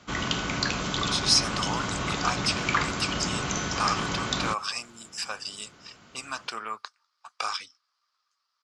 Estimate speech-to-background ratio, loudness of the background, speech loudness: −1.5 dB, −28.5 LKFS, −30.0 LKFS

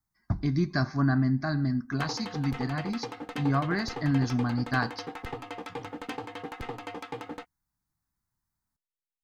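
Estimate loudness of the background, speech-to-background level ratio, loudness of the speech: −39.5 LKFS, 10.5 dB, −29.0 LKFS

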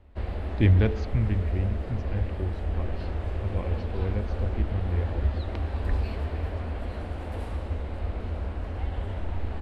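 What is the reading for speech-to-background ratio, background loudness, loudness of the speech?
4.0 dB, −33.0 LKFS, −29.0 LKFS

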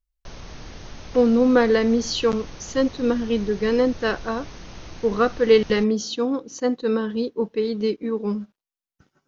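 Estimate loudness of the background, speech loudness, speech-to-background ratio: −41.0 LKFS, −22.0 LKFS, 19.0 dB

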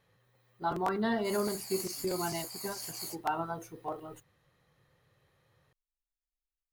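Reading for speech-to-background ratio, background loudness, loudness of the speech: 4.0 dB, −39.5 LKFS, −35.5 LKFS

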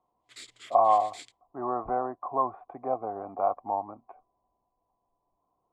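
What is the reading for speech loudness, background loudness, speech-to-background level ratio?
−29.0 LKFS, −48.5 LKFS, 19.5 dB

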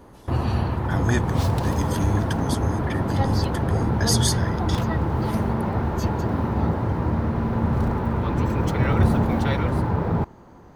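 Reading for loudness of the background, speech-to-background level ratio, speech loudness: −23.5 LKFS, −4.0 dB, −27.5 LKFS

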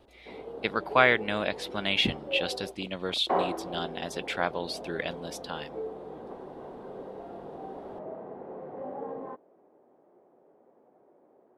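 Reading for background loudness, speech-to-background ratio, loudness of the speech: −39.0 LKFS, 9.5 dB, −29.5 LKFS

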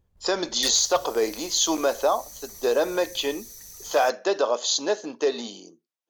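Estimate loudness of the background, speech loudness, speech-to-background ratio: −40.0 LKFS, −24.0 LKFS, 16.0 dB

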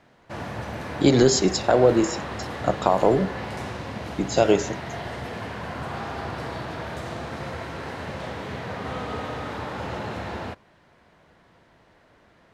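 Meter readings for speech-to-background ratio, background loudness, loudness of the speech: 12.0 dB, −33.0 LKFS, −21.0 LKFS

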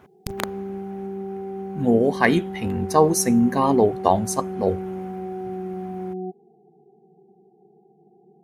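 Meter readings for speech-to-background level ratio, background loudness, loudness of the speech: 11.0 dB, −32.0 LKFS, −21.0 LKFS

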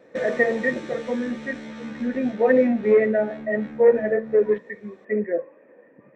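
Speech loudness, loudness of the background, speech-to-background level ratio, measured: −22.5 LKFS, −38.0 LKFS, 15.5 dB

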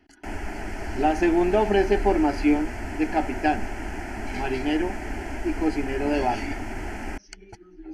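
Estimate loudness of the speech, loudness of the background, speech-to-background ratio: −25.0 LKFS, −34.5 LKFS, 9.5 dB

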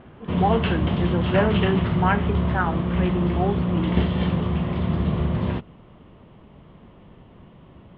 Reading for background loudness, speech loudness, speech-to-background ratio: −24.0 LKFS, −26.5 LKFS, −2.5 dB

